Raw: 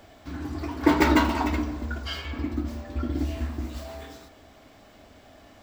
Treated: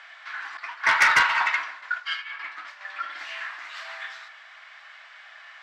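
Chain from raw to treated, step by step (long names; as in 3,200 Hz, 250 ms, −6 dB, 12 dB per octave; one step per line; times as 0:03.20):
low-pass filter 3,700 Hz 12 dB per octave
0:00.57–0:02.81: downward expander −27 dBFS
high-pass filter 1,100 Hz 24 dB per octave
parametric band 1,800 Hz +8 dB 0.85 octaves
soft clipping −20 dBFS, distortion −10 dB
level +8.5 dB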